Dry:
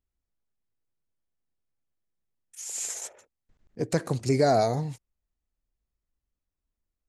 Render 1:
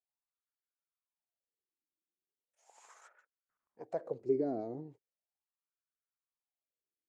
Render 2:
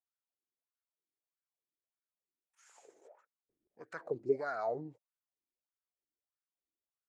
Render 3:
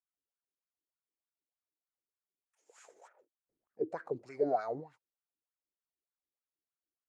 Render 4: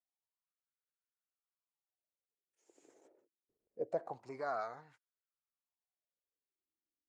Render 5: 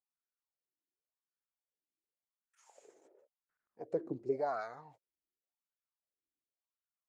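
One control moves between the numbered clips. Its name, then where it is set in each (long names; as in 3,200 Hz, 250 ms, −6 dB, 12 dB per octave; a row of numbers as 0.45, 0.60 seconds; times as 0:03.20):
LFO wah, speed: 0.38, 1.6, 3.3, 0.25, 0.91 Hertz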